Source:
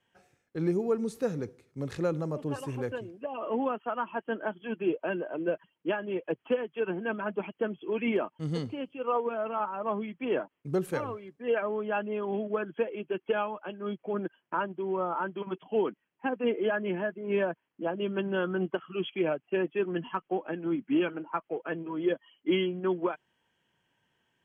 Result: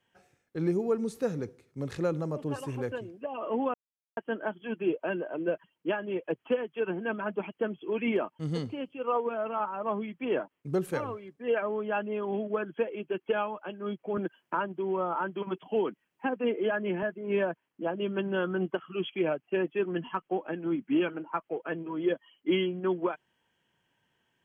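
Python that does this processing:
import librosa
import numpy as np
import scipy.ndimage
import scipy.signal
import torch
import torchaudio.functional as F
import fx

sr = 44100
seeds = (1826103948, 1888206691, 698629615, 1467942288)

y = fx.band_squash(x, sr, depth_pct=40, at=(14.17, 17.03))
y = fx.edit(y, sr, fx.silence(start_s=3.74, length_s=0.43), tone=tone)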